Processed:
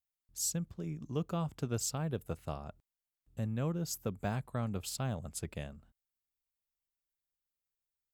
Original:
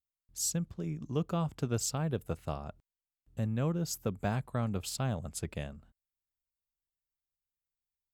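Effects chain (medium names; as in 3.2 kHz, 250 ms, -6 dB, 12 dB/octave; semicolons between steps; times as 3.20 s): treble shelf 10 kHz +4.5 dB; trim -3 dB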